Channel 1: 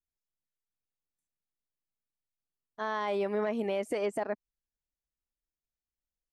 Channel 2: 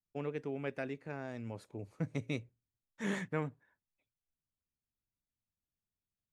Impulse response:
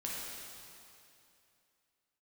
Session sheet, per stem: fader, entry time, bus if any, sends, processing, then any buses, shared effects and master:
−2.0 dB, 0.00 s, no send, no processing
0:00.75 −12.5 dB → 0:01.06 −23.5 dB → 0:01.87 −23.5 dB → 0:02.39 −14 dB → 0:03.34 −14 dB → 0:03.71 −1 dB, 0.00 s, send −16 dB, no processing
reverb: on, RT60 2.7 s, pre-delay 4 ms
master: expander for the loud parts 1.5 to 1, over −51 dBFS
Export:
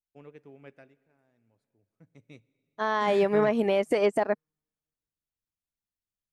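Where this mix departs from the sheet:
stem 1 −2.0 dB → +8.5 dB
stem 2 −12.5 dB → −2.0 dB

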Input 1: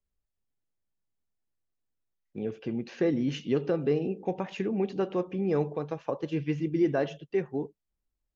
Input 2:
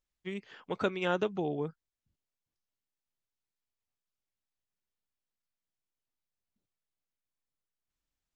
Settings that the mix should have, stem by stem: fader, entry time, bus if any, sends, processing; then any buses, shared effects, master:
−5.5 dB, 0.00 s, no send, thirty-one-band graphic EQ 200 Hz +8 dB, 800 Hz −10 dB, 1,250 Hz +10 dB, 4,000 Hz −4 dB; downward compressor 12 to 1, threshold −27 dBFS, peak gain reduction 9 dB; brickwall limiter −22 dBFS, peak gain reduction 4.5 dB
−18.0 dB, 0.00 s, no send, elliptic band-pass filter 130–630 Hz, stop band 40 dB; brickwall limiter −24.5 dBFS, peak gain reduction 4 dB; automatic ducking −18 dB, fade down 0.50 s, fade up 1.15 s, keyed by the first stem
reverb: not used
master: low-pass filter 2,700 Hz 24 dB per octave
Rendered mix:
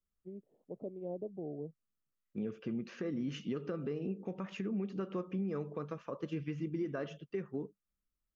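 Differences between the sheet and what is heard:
stem 2 −18.0 dB → −7.5 dB
master: missing low-pass filter 2,700 Hz 24 dB per octave

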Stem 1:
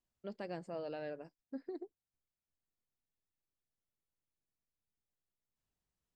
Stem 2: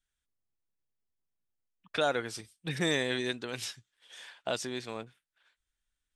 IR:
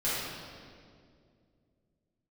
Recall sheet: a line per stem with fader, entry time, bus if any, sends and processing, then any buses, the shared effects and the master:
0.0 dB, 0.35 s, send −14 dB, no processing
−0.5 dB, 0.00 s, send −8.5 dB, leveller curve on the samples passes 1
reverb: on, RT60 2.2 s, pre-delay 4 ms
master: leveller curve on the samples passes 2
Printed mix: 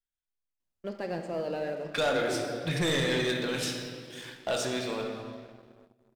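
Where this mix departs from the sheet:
stem 1: entry 0.35 s → 0.60 s
stem 2 −0.5 dB → −9.5 dB

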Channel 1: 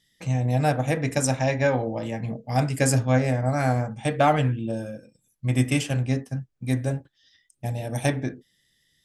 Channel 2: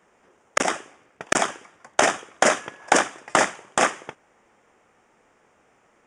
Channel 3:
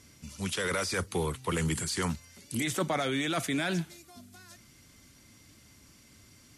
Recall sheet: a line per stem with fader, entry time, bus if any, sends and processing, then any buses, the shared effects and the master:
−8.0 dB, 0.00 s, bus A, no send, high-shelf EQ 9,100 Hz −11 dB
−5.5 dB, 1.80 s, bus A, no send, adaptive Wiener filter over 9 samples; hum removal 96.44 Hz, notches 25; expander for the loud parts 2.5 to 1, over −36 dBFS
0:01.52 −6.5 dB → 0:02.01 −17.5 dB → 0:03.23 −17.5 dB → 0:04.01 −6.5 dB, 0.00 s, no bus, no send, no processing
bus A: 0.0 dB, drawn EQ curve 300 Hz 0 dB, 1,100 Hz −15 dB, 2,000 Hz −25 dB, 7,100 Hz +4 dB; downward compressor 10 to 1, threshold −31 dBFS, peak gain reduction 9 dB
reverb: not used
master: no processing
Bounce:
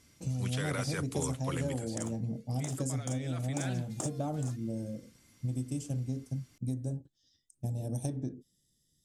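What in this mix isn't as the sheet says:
stem 1 −8.0 dB → −1.0 dB
stem 2: entry 1.80 s → 0.65 s

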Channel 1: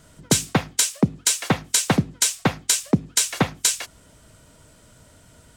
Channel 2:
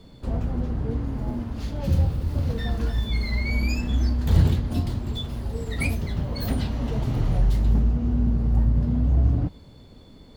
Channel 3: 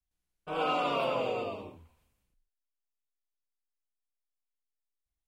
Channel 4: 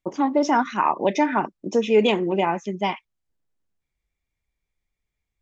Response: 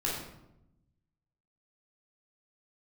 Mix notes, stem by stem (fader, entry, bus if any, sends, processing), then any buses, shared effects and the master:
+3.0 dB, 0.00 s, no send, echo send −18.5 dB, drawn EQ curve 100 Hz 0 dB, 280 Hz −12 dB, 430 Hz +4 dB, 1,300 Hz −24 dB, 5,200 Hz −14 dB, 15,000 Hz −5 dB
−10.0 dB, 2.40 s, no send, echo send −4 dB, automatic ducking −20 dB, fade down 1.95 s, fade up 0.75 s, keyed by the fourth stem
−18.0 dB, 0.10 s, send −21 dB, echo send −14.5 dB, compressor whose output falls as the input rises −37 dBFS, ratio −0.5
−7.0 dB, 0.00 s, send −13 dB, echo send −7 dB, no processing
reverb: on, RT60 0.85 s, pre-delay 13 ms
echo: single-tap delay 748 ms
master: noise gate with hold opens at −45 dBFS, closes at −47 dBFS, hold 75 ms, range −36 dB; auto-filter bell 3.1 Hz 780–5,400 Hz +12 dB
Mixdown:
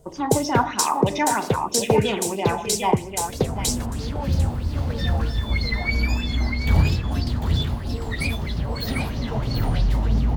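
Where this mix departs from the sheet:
stem 2 −10.0 dB → −0.5 dB
master: missing noise gate with hold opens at −45 dBFS, closes at −47 dBFS, hold 75 ms, range −36 dB

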